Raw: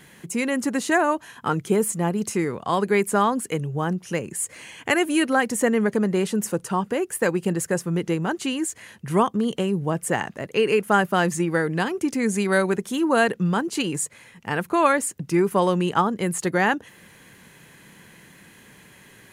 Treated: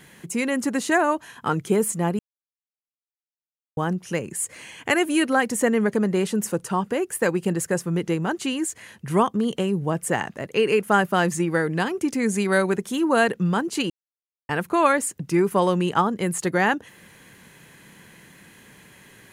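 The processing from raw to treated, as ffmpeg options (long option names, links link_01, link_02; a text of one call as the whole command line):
ffmpeg -i in.wav -filter_complex "[0:a]asplit=5[link_01][link_02][link_03][link_04][link_05];[link_01]atrim=end=2.19,asetpts=PTS-STARTPTS,afade=type=out:start_time=2.186:duration=0.004:curve=hsin[link_06];[link_02]atrim=start=2.19:end=3.77,asetpts=PTS-STARTPTS,volume=0[link_07];[link_03]atrim=start=3.77:end=13.9,asetpts=PTS-STARTPTS,afade=type=in:duration=0.004:curve=hsin,afade=type=out:start_time=10.126:duration=0.004:curve=hsin[link_08];[link_04]atrim=start=13.9:end=14.49,asetpts=PTS-STARTPTS,volume=0[link_09];[link_05]atrim=start=14.49,asetpts=PTS-STARTPTS,afade=type=in:duration=0.004:curve=hsin[link_10];[link_06][link_07][link_08][link_09][link_10]concat=n=5:v=0:a=1" out.wav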